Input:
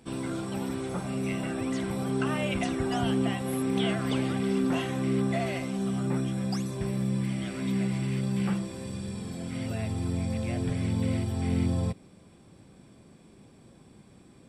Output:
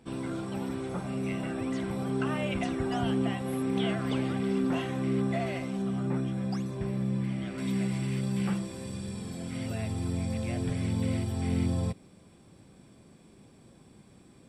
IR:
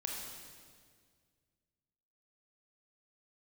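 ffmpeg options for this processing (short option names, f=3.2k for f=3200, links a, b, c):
-af "asetnsamples=n=441:p=0,asendcmd='5.82 highshelf g -11.5;7.58 highshelf g 2',highshelf=f=4.4k:g=-6.5,volume=-1.5dB"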